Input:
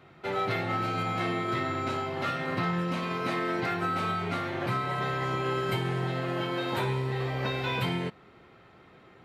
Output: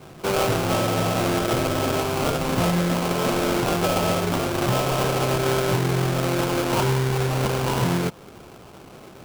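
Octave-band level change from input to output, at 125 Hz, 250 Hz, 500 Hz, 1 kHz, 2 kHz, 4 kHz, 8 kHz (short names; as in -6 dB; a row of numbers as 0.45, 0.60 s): +8.5, +8.5, +10.0, +5.5, +4.0, +8.5, +21.5 dB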